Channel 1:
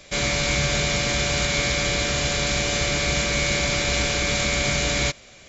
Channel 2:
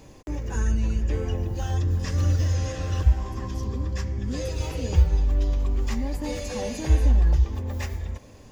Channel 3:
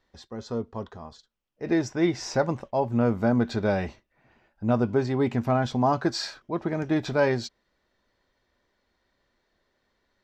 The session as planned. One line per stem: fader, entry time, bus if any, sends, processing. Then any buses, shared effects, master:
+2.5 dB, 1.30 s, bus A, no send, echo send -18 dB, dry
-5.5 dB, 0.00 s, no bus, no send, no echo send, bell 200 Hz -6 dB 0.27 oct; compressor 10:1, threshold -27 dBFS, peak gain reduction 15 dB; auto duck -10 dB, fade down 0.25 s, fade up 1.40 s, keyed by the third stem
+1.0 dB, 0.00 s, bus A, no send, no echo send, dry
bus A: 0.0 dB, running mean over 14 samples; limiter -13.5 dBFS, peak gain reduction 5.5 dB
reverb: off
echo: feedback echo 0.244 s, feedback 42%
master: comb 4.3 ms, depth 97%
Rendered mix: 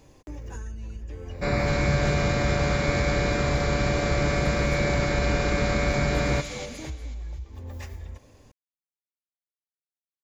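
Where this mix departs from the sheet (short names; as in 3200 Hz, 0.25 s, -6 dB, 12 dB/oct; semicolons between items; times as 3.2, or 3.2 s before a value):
stem 3: muted; master: missing comb 4.3 ms, depth 97%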